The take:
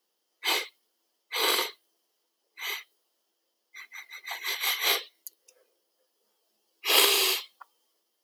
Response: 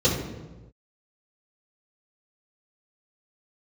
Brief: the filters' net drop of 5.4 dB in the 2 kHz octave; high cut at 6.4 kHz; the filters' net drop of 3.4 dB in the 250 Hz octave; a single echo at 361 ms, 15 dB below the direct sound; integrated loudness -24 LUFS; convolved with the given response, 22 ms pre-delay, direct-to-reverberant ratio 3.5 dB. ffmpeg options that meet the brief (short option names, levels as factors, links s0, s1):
-filter_complex "[0:a]lowpass=6400,equalizer=f=250:t=o:g=-6.5,equalizer=f=2000:t=o:g=-6.5,aecho=1:1:361:0.178,asplit=2[s0][s1];[1:a]atrim=start_sample=2205,adelay=22[s2];[s1][s2]afir=irnorm=-1:irlink=0,volume=0.1[s3];[s0][s3]amix=inputs=2:normalize=0,volume=1.68"